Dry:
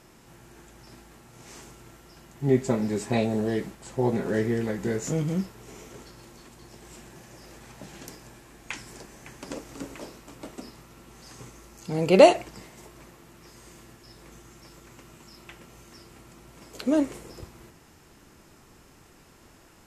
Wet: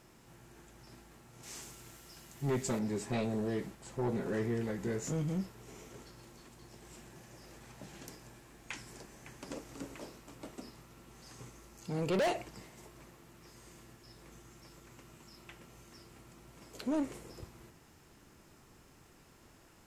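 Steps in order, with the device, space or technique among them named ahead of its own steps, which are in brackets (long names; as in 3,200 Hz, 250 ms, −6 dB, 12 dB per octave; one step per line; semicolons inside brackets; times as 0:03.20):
open-reel tape (soft clipping −21 dBFS, distortion −5 dB; parametric band 120 Hz +2 dB; white noise bed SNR 44 dB)
0:01.43–0:02.79: high-shelf EQ 2,600 Hz +9.5 dB
level −6.5 dB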